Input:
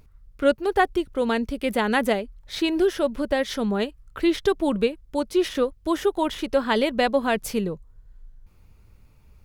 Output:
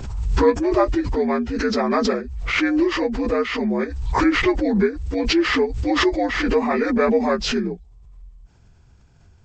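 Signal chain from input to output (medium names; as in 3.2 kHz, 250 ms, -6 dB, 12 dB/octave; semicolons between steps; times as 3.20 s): frequency axis rescaled in octaves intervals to 79%; swell ahead of each attack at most 42 dB/s; trim +3 dB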